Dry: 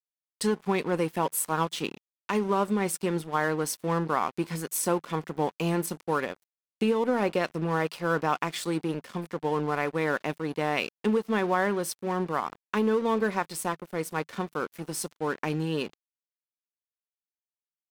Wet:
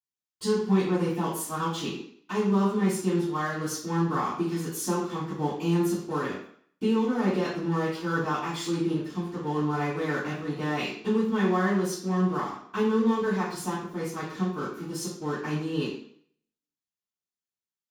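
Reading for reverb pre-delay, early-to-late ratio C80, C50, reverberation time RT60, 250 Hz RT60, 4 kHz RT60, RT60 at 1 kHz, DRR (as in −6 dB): 3 ms, 6.5 dB, 2.5 dB, 0.60 s, 0.55 s, 0.55 s, 0.60 s, −15.5 dB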